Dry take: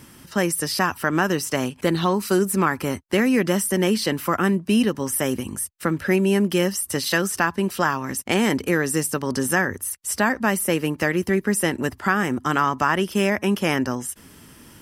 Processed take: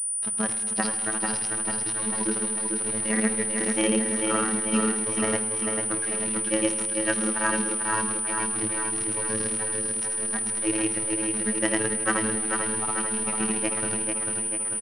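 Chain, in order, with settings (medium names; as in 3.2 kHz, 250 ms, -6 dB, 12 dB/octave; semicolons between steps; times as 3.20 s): granulator 242 ms, grains 4.5 per s, spray 33 ms, pitch spread up and down by 0 st; trance gate "xx.x.x.xxxx..." 148 bpm -12 dB; granulator, grains 20 per s, pitch spread up and down by 0 st; word length cut 6-bit, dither none; robot voice 109 Hz; feedback delay 443 ms, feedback 59%, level -4.5 dB; simulated room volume 2500 m³, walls mixed, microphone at 0.72 m; class-D stage that switches slowly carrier 9.4 kHz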